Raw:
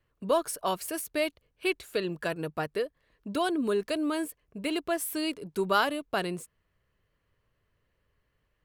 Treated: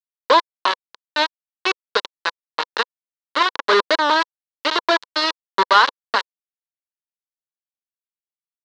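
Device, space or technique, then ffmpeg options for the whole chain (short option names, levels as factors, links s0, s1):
hand-held game console: -filter_complex "[0:a]asettb=1/sr,asplit=3[s0][s1][s2];[s0]atrim=end=3.664[s3];[s1]atrim=start=3.66:end=5.38,asetpts=PTS-STARTPTS,afade=t=in:d=0.004:c=qsin,afade=t=out:st=1.716:d=0.004:c=qsin,adynamicequalizer=threshold=0.00794:dfrequency=660:dqfactor=0.92:tfrequency=660:tqfactor=0.92:attack=5:release=100:ratio=0.375:range=3:mode=boostabove:tftype=bell[s4];[s2]atrim=start=5.376[s5];[s3][s4]acrossfade=d=0.004:c1=hsin:c2=qsin[s6];[s6][s5]acrossfade=d=0.004:c1=qsin:c2=hsin,acrusher=bits=3:mix=0:aa=0.000001,highpass=440,equalizer=f=500:t=q:w=4:g=3,equalizer=f=710:t=q:w=4:g=-7,equalizer=f=1000:t=q:w=4:g=9,equalizer=f=1600:t=q:w=4:g=4,equalizer=f=2400:t=q:w=4:g=-6,equalizer=f=4100:t=q:w=4:g=6,lowpass=f=4500:w=0.5412,lowpass=f=4500:w=1.3066,volume=2.66"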